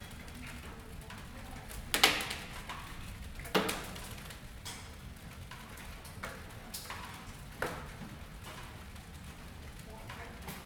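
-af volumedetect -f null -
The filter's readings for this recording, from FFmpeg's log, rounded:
mean_volume: -40.7 dB
max_volume: -4.3 dB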